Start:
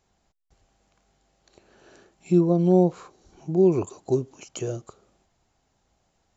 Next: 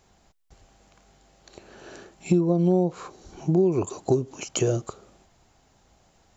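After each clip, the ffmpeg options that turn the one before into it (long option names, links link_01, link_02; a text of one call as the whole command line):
ffmpeg -i in.wav -af "acompressor=threshold=-27dB:ratio=6,volume=9dB" out.wav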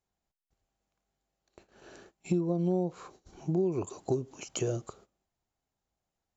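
ffmpeg -i in.wav -af "agate=range=-18dB:threshold=-47dB:ratio=16:detection=peak,volume=-8dB" out.wav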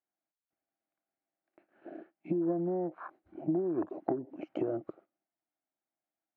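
ffmpeg -i in.wav -af "afwtdn=0.00794,acompressor=threshold=-37dB:ratio=5,highpass=260,equalizer=frequency=310:width_type=q:width=4:gain=10,equalizer=frequency=440:width_type=q:width=4:gain=-9,equalizer=frequency=650:width_type=q:width=4:gain=5,equalizer=frequency=1000:width_type=q:width=4:gain=-3,equalizer=frequency=1500:width_type=q:width=4:gain=3,equalizer=frequency=2100:width_type=q:width=4:gain=3,lowpass=frequency=2400:width=0.5412,lowpass=frequency=2400:width=1.3066,volume=8.5dB" out.wav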